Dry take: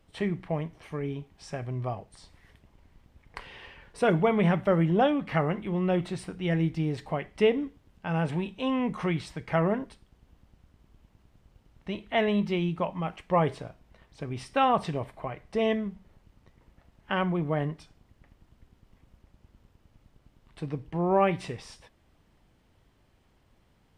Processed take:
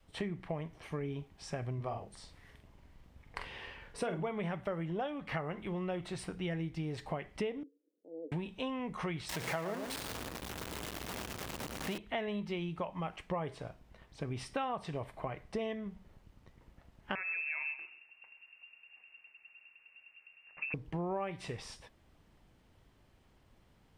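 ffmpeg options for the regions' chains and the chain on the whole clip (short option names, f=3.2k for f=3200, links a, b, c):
-filter_complex "[0:a]asettb=1/sr,asplit=3[a][b][c];[a]atrim=end=1.764[d];[b]atrim=start=1.76:end=4.28,asetpts=PTS-STARTPTS,afade=t=in:d=0.004:c=qsin,afade=t=out:st=2.516:d=0.004:c=qsin,bandreject=f=50:t=h:w=6,bandreject=f=100:t=h:w=6,bandreject=f=150:t=h:w=6,bandreject=f=200:t=h:w=6,bandreject=f=250:t=h:w=6,bandreject=f=300:t=h:w=6,bandreject=f=350:t=h:w=6,bandreject=f=400:t=h:w=6,asplit=2[e][f];[f]adelay=45,volume=-6.5dB[g];[e][g]amix=inputs=2:normalize=0,atrim=end_sample=111132[h];[c]atrim=start=4.276[i];[d][h]acrossfade=d=0.004:c1=hsin:c2=qsin[j];[j][i]acrossfade=d=0.004:c1=qsin:c2=hsin,asettb=1/sr,asplit=3[k][l][m];[k]atrim=end=7.634[n];[l]atrim=start=7.63:end=8.32,asetpts=PTS-STARTPTS,afade=t=in:d=0.004:c=qsin,afade=t=out:st=0.686:d=0.004:c=qsin,asuperpass=centerf=380:order=8:qfactor=2,aecho=1:1:1.3:0.82,atrim=end_sample=30429[o];[m]atrim=start=8.316[p];[n][o]acrossfade=d=0.004:c1=hsin:c2=qsin[q];[q][p]acrossfade=d=0.004:c1=qsin:c2=hsin,asettb=1/sr,asplit=3[r][s][t];[r]atrim=end=9.294[u];[s]atrim=start=9.29:end=11.98,asetpts=PTS-STARTPTS,afade=t=in:d=0.004:c=qsin,afade=t=out:st=2.686:d=0.004:c=qsin,aeval=exprs='val(0)+0.5*0.0299*sgn(val(0))':c=same,highpass=f=240:p=1,aecho=1:1:113:0.355,atrim=end_sample=118629[v];[t]atrim=start=11.976[w];[u][v]acrossfade=d=0.004:c1=hsin:c2=qsin[x];[x][w]acrossfade=d=0.004:c1=qsin:c2=hsin,asettb=1/sr,asplit=3[y][z][aa];[y]atrim=end=17.154[ab];[z]atrim=start=17.15:end=20.74,asetpts=PTS-STARTPTS,afade=t=in:d=0.004:c=qsin,afade=t=out:st=3.586:d=0.004:c=qsin,acompressor=threshold=-31dB:ratio=2.5:attack=3.2:release=140:knee=1:detection=peak,aecho=1:1:130|260|390:0.188|0.049|0.0127,atrim=end_sample=158319,lowpass=f=2.4k:t=q:w=0.5098,lowpass=f=2.4k:t=q:w=0.6013,lowpass=f=2.4k:t=q:w=0.9,lowpass=f=2.4k:t=q:w=2.563,afreqshift=-2800[ac];[aa]atrim=start=20.736[ad];[ab][ac]acrossfade=d=0.004:c1=hsin:c2=qsin[ae];[ae][ad]acrossfade=d=0.004:c1=qsin:c2=hsin,adynamicequalizer=threshold=0.01:dfrequency=220:dqfactor=0.9:tfrequency=220:tqfactor=0.9:attack=5:release=100:ratio=0.375:range=3.5:mode=cutabove:tftype=bell,acompressor=threshold=-33dB:ratio=6,volume=-1dB"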